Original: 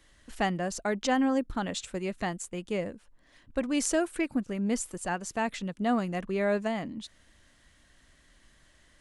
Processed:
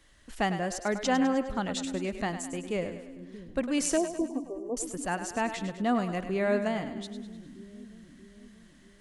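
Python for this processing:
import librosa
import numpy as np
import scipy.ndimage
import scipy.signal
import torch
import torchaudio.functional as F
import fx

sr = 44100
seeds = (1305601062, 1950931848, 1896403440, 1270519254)

y = fx.brickwall_bandpass(x, sr, low_hz=250.0, high_hz=1200.0, at=(3.97, 4.77))
y = fx.echo_split(y, sr, split_hz=350.0, low_ms=631, high_ms=102, feedback_pct=52, wet_db=-10.0)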